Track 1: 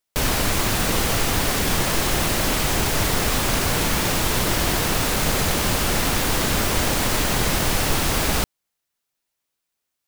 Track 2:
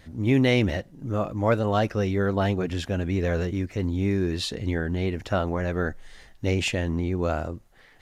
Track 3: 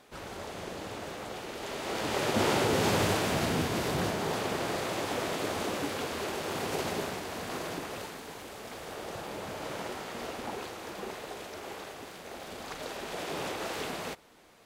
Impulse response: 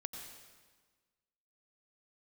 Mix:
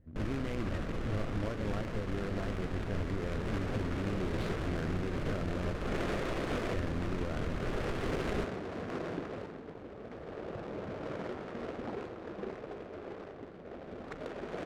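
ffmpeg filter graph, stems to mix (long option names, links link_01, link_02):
-filter_complex "[0:a]volume=-12.5dB[link_01];[1:a]acompressor=threshold=-24dB:ratio=6,acrusher=bits=2:mode=log:mix=0:aa=0.000001,volume=-8dB,asplit=3[link_02][link_03][link_04];[link_02]atrim=end=5.75,asetpts=PTS-STARTPTS,afade=type=out:start_time=5.746:duration=0.004:curve=hsin[link_05];[link_03]atrim=start=5.75:end=6.71,asetpts=PTS-STARTPTS,volume=0[link_06];[link_04]atrim=start=6.71,asetpts=PTS-STARTPTS,afade=type=in:duration=0.004:curve=hsin[link_07];[link_05][link_06][link_07]concat=n=3:v=0:a=1,asplit=2[link_08][link_09];[2:a]adelay=1400,volume=2dB[link_10];[link_09]apad=whole_len=708118[link_11];[link_10][link_11]sidechaincompress=threshold=-44dB:ratio=8:attack=10:release=336[link_12];[link_01][link_08][link_12]amix=inputs=3:normalize=0,equalizer=frequency=860:width_type=o:width=0.74:gain=-8.5,adynamicsmooth=sensitivity=4.5:basefreq=550,alimiter=limit=-24dB:level=0:latency=1:release=177"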